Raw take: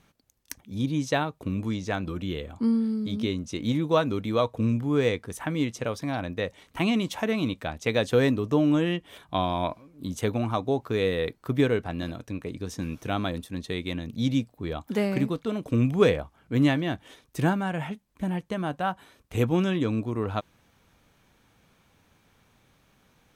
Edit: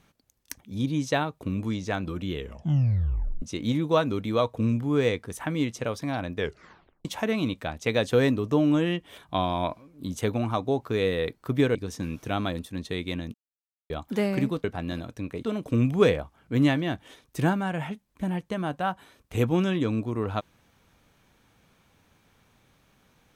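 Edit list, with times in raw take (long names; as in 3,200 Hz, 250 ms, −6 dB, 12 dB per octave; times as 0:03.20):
0:02.34: tape stop 1.08 s
0:06.36: tape stop 0.69 s
0:11.75–0:12.54: move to 0:15.43
0:14.13–0:14.69: silence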